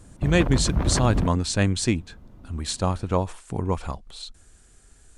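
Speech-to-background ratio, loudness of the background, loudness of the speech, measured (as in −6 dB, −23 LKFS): 2.0 dB, −27.0 LKFS, −25.0 LKFS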